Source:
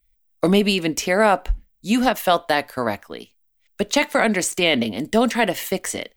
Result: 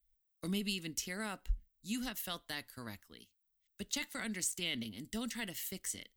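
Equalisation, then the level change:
guitar amp tone stack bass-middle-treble 6-0-2
high-shelf EQ 4,700 Hz +5.5 dB
notch filter 2,400 Hz, Q 11
−1.0 dB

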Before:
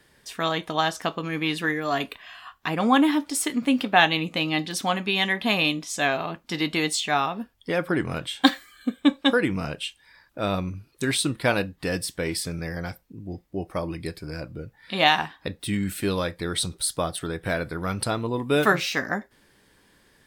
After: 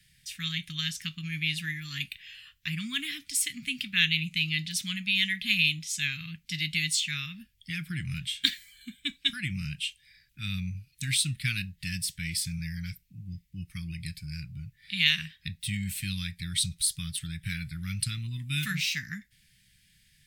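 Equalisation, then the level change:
elliptic band-stop filter 160–2,200 Hz, stop band 70 dB
parametric band 340 Hz +5 dB 0.22 octaves
0.0 dB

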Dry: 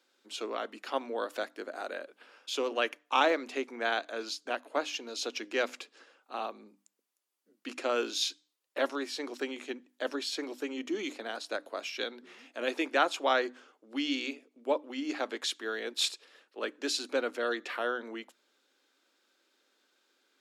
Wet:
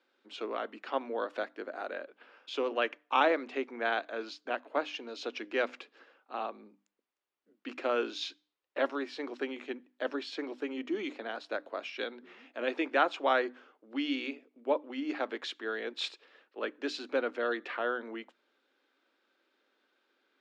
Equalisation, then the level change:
low-pass filter 2,900 Hz 12 dB per octave
0.0 dB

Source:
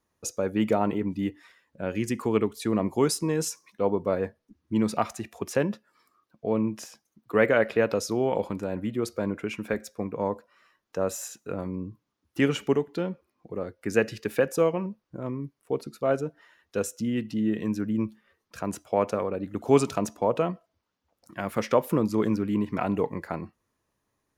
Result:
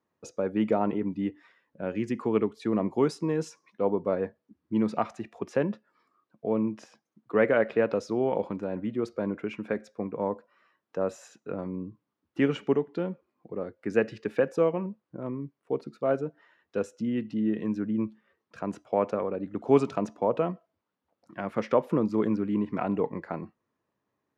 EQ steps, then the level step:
high-pass filter 140 Hz 12 dB per octave
head-to-tape spacing loss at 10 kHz 22 dB
0.0 dB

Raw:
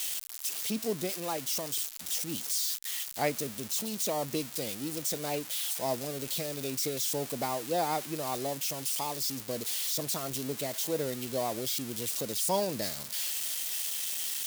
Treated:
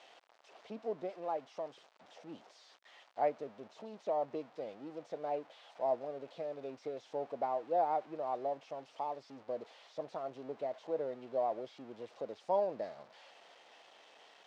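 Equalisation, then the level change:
resonant band-pass 680 Hz, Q 1.9
high-frequency loss of the air 150 metres
+1.0 dB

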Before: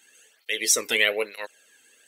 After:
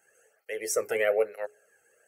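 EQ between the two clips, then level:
high shelf with overshoot 1,500 Hz −11.5 dB, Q 1.5
mains-hum notches 60/120/180/240/300/360/420 Hz
phaser with its sweep stopped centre 1,000 Hz, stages 6
+3.5 dB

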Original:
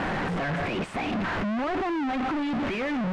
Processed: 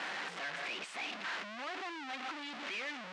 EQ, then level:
band-pass filter 210–5,800 Hz
first difference
low-shelf EQ 290 Hz +5 dB
+4.5 dB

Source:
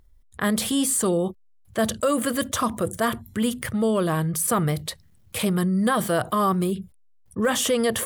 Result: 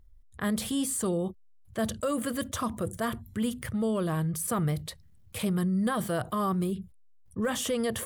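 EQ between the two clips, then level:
low-shelf EQ 160 Hz +9 dB
−8.5 dB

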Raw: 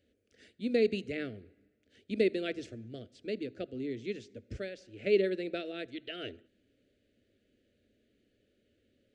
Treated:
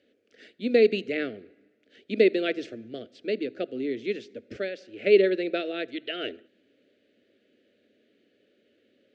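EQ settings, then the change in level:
band-pass filter 270–4,300 Hz
+9.0 dB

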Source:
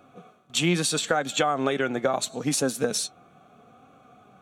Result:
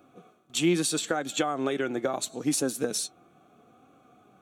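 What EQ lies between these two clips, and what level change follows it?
parametric band 330 Hz +9.5 dB 0.47 octaves
high-shelf EQ 7,300 Hz +7.5 dB
−6.0 dB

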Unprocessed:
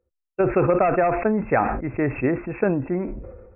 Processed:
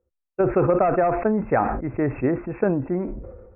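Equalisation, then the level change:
low-pass filter 1,600 Hz 12 dB per octave
0.0 dB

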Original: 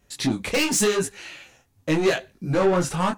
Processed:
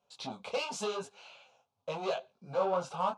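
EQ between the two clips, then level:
band-pass filter 320–3,200 Hz
phaser with its sweep stopped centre 770 Hz, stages 4
−4.5 dB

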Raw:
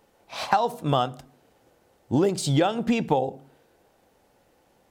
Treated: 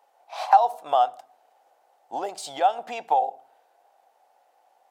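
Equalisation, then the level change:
high-pass with resonance 740 Hz, resonance Q 4.9
−6.0 dB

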